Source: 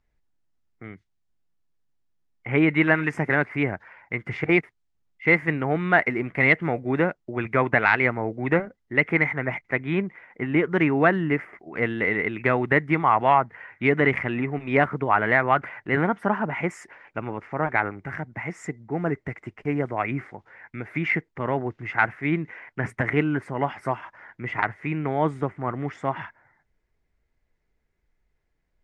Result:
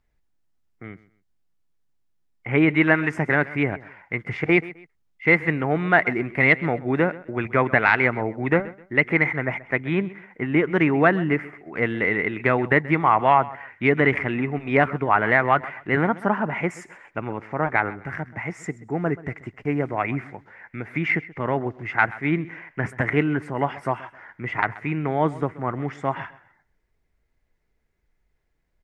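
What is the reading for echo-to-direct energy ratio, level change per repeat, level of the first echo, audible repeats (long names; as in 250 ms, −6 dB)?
−18.5 dB, −11.0 dB, −19.0 dB, 2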